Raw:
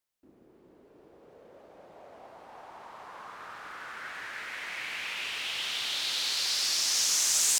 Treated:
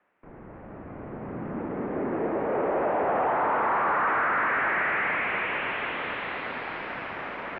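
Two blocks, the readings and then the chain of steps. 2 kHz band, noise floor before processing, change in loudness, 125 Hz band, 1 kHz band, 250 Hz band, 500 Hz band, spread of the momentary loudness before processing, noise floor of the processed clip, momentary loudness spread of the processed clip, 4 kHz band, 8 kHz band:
+9.5 dB, -60 dBFS, +1.0 dB, +21.0 dB, +18.0 dB, +23.0 dB, +21.5 dB, 22 LU, -45 dBFS, 15 LU, -15.0 dB, under -40 dB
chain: overdrive pedal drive 35 dB, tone 1400 Hz, clips at -12.5 dBFS; mistuned SSB -330 Hz 540–2600 Hz

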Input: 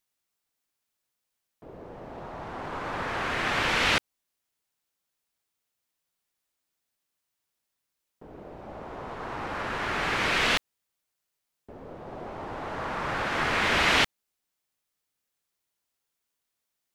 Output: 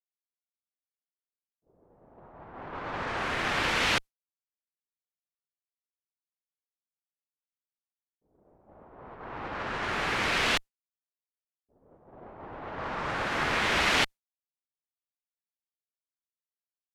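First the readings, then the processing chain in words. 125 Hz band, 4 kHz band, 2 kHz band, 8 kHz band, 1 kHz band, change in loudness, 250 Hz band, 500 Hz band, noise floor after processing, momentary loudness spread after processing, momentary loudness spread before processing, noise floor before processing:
-2.5 dB, -2.0 dB, -2.0 dB, -0.5 dB, -2.0 dB, -1.5 dB, -2.5 dB, -2.5 dB, under -85 dBFS, 18 LU, 20 LU, -83 dBFS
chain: one diode to ground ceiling -24.5 dBFS; low-pass opened by the level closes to 480 Hz, open at -27.5 dBFS; expander -32 dBFS

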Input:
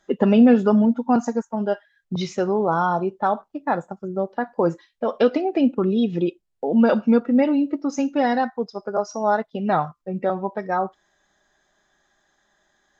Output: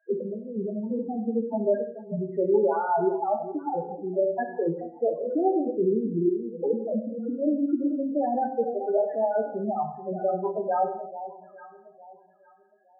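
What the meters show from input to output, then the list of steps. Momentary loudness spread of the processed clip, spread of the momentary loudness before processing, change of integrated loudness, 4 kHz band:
7 LU, 10 LU, -5.5 dB, under -40 dB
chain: Wiener smoothing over 15 samples; in parallel at -8 dB: soft clip -22 dBFS, distortion -7 dB; on the sum: ladder low-pass 2000 Hz, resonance 55%; on a send: echo with dull and thin repeats by turns 0.431 s, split 890 Hz, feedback 51%, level -13 dB; on the sum: negative-ratio compressor -28 dBFS, ratio -0.5; HPF 120 Hz 6 dB/oct; loudest bins only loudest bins 4; band shelf 510 Hz +8 dB; non-linear reverb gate 0.29 s falling, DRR 4.5 dB

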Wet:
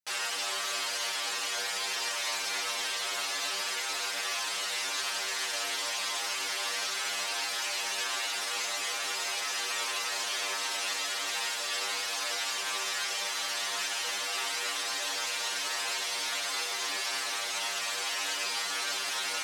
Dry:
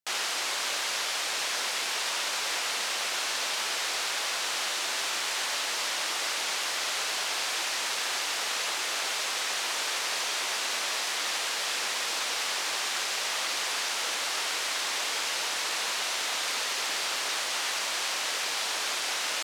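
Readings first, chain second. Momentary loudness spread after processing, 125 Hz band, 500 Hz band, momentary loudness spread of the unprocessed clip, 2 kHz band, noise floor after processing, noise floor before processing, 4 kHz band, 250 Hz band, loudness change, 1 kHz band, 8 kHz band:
0 LU, n/a, -2.5 dB, 0 LU, -2.5 dB, -34 dBFS, -31 dBFS, -2.5 dB, -3.0 dB, -2.5 dB, -2.5 dB, -2.5 dB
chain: metallic resonator 95 Hz, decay 0.4 s, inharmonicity 0.002; gain +8 dB

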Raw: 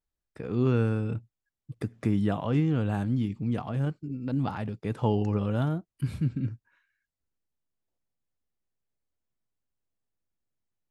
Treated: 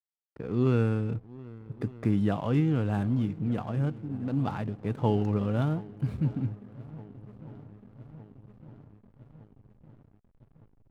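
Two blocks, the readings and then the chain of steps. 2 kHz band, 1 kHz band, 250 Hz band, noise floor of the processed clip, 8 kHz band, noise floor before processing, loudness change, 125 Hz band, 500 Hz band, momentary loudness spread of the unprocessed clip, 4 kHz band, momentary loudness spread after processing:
-1.0 dB, -0.5 dB, 0.0 dB, -65 dBFS, n/a, under -85 dBFS, 0.0 dB, 0.0 dB, 0.0 dB, 10 LU, -1.5 dB, 20 LU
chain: swung echo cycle 1.208 s, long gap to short 1.5:1, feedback 67%, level -19 dB; backlash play -44 dBFS; mismatched tape noise reduction decoder only

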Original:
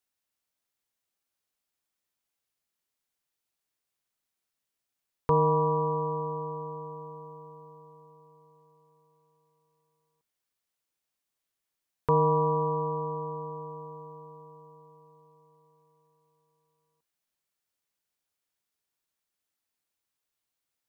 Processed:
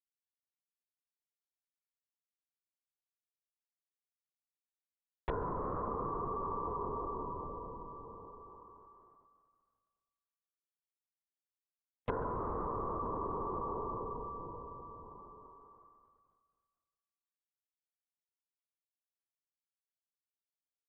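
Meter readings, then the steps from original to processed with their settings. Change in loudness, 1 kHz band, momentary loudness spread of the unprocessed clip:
-11.0 dB, -8.0 dB, 21 LU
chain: tracing distortion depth 0.21 ms; steep low-pass 1600 Hz 72 dB/oct; expander -59 dBFS; on a send: thinning echo 0.143 s, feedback 67%, high-pass 850 Hz, level -4.5 dB; on the sum: compressor 16:1, threshold -38 dBFS, peak gain reduction 19.5 dB; LPC vocoder at 8 kHz whisper; mismatched tape noise reduction encoder only; gain +4.5 dB

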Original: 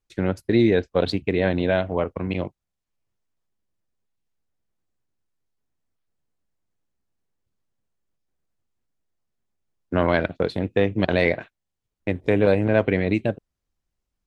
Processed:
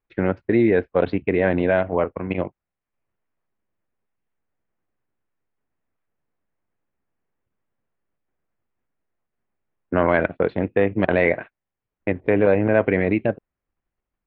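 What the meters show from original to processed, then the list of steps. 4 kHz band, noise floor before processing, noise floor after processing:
n/a, -82 dBFS, under -85 dBFS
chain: LPF 2400 Hz 24 dB/oct; low shelf 190 Hz -7.5 dB; in parallel at +0.5 dB: level quantiser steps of 14 dB

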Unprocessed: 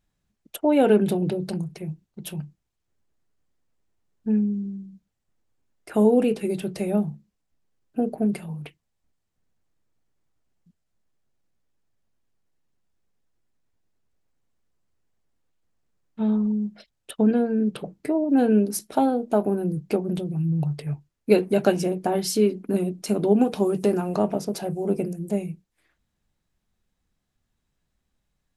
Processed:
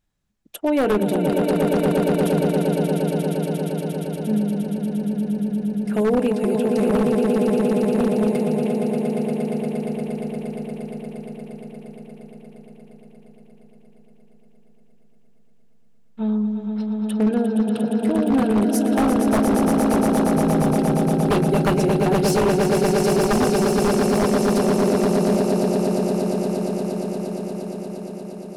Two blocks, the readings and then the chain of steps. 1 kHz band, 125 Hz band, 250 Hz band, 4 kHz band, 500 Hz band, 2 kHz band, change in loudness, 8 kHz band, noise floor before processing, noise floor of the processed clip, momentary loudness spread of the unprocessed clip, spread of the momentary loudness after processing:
+7.0 dB, +6.0 dB, +5.5 dB, +6.5 dB, +5.0 dB, +8.5 dB, +3.5 dB, +6.5 dB, -78 dBFS, -49 dBFS, 15 LU, 11 LU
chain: swelling echo 0.117 s, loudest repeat 8, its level -6.5 dB; wavefolder -12 dBFS

